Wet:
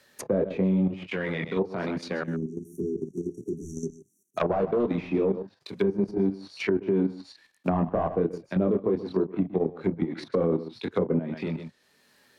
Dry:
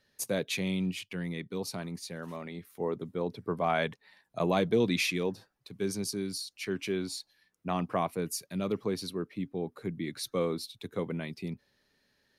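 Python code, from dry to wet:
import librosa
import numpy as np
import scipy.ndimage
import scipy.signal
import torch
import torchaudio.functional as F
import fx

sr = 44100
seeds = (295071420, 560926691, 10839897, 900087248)

y = fx.law_mismatch(x, sr, coded='A')
y = fx.highpass(y, sr, hz=220.0, slope=6)
y = fx.fold_sine(y, sr, drive_db=7, ceiling_db=-15.5)
y = fx.chorus_voices(y, sr, voices=2, hz=1.0, base_ms=23, depth_ms=3.0, mix_pct=40)
y = fx.spec_erase(y, sr, start_s=2.23, length_s=2.14, low_hz=430.0, high_hz=5600.0)
y = fx.low_shelf(y, sr, hz=440.0, db=-10.0, at=(2.85, 4.97), fade=0.02)
y = y + 10.0 ** (-13.5 / 20.0) * np.pad(y, (int(128 * sr / 1000.0), 0))[:len(y)]
y = fx.level_steps(y, sr, step_db=10)
y = fx.env_lowpass_down(y, sr, base_hz=660.0, full_db=-31.0)
y = fx.band_squash(y, sr, depth_pct=40)
y = y * 10.0 ** (8.5 / 20.0)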